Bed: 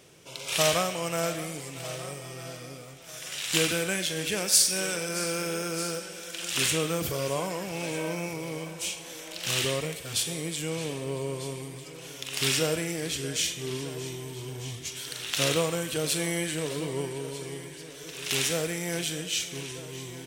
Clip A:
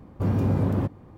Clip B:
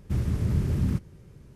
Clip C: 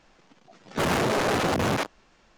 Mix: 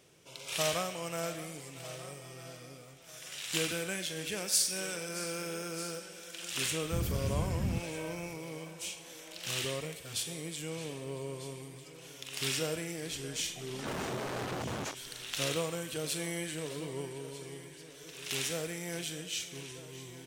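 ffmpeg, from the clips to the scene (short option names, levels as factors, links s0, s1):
-filter_complex "[0:a]volume=0.422[s0];[3:a]acompressor=threshold=0.0224:ratio=16:attack=1.5:release=384:knee=1:detection=peak[s1];[2:a]atrim=end=1.55,asetpts=PTS-STARTPTS,volume=0.398,afade=t=in:d=0.004:c=hsin,afade=t=out:st=1.546:d=0.004:c=hsin,adelay=300762S[s2];[s1]atrim=end=2.37,asetpts=PTS-STARTPTS,volume=0.944,afade=t=in:d=0.004:c=hsin,afade=t=out:st=2.366:d=0.004:c=hsin,adelay=13080[s3];[s0][s2][s3]amix=inputs=3:normalize=0"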